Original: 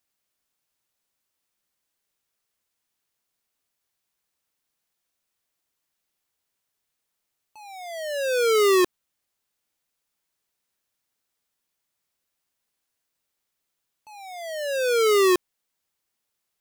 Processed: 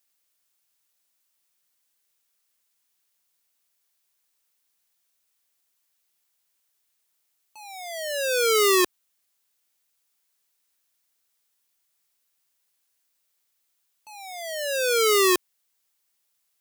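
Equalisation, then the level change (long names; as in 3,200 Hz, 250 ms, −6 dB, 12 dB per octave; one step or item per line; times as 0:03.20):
spectral tilt +2 dB per octave
0.0 dB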